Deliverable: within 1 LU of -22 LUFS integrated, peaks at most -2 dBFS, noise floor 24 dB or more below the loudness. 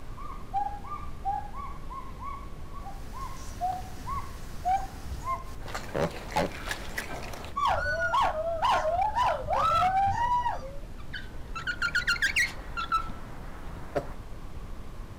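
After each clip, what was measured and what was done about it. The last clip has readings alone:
clipped samples 1.4%; clipping level -21.0 dBFS; noise floor -42 dBFS; noise floor target -54 dBFS; loudness -30.0 LUFS; peak level -21.0 dBFS; loudness target -22.0 LUFS
-> clip repair -21 dBFS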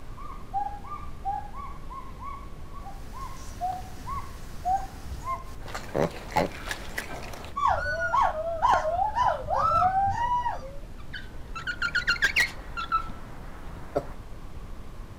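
clipped samples 0.0%; noise floor -42 dBFS; noise floor target -53 dBFS
-> noise print and reduce 11 dB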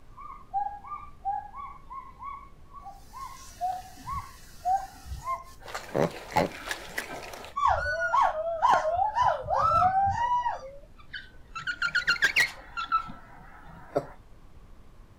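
noise floor -51 dBFS; noise floor target -52 dBFS
-> noise print and reduce 6 dB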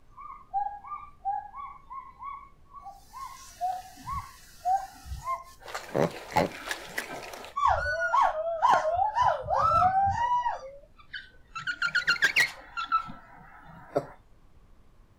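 noise floor -57 dBFS; loudness -28.0 LUFS; peak level -11.5 dBFS; loudness target -22.0 LUFS
-> trim +6 dB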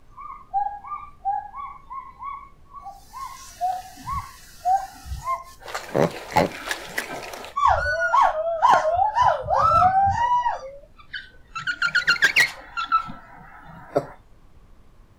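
loudness -22.0 LUFS; peak level -5.5 dBFS; noise floor -51 dBFS

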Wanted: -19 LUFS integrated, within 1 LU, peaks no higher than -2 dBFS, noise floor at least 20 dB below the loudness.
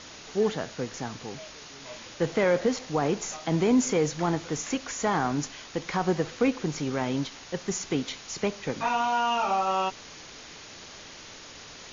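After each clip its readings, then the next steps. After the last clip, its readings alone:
noise floor -46 dBFS; noise floor target -48 dBFS; loudness -28.0 LUFS; peak level -13.0 dBFS; loudness target -19.0 LUFS
-> noise reduction 6 dB, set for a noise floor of -46 dBFS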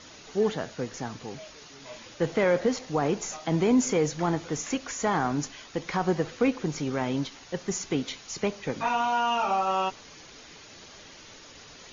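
noise floor -49 dBFS; loudness -28.0 LUFS; peak level -13.5 dBFS; loudness target -19.0 LUFS
-> trim +9 dB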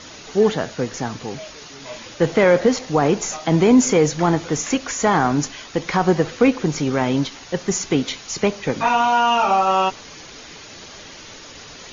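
loudness -19.0 LUFS; peak level -4.5 dBFS; noise floor -40 dBFS

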